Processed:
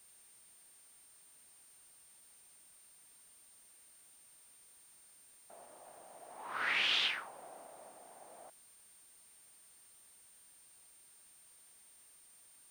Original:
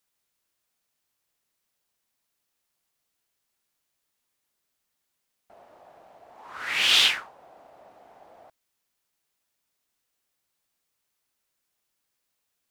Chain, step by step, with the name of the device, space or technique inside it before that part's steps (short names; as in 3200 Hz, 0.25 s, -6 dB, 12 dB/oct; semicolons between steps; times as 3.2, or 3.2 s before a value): medium wave at night (BPF 140–3800 Hz; compressor 5:1, threshold -32 dBFS, peak gain reduction 13.5 dB; tremolo 0.43 Hz, depth 50%; whine 9000 Hz -62 dBFS; white noise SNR 21 dB); gain +1.5 dB